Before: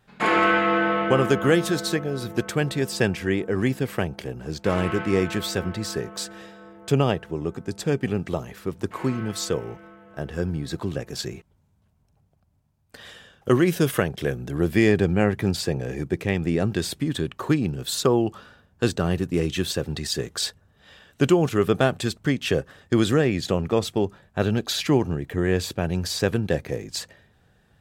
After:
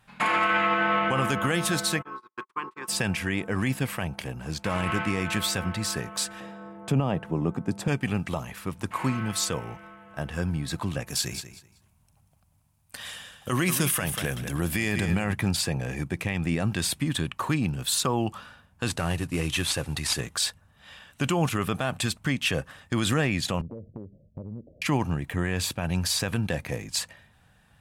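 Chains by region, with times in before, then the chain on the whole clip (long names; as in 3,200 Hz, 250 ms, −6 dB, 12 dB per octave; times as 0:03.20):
0:02.01–0:02.87: ceiling on every frequency bin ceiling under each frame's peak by 19 dB + noise gate −29 dBFS, range −47 dB + pair of resonant band-passes 640 Hz, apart 1.5 octaves
0:06.40–0:07.88: high-pass filter 140 Hz + tilt shelving filter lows +8 dB, about 1,200 Hz
0:11.07–0:15.33: high-shelf EQ 4,500 Hz +8.5 dB + repeating echo 189 ms, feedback 20%, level −12 dB
0:18.89–0:20.20: variable-slope delta modulation 64 kbit/s + parametric band 200 Hz −11.5 dB 0.24 octaves
0:23.61–0:24.82: Butterworth low-pass 590 Hz 72 dB per octave + downward compressor, threshold −32 dBFS
whole clip: graphic EQ with 15 bands 400 Hz −10 dB, 1,000 Hz +5 dB, 2,500 Hz +5 dB, 10,000 Hz +8 dB; brickwall limiter −15 dBFS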